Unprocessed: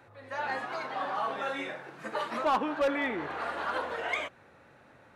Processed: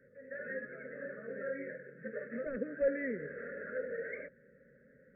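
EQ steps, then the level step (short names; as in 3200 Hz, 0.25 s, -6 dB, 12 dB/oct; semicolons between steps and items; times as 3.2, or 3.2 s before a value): Chebyshev band-stop 540–1700 Hz, order 3; brick-wall FIR low-pass 2600 Hz; fixed phaser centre 490 Hz, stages 8; +1.0 dB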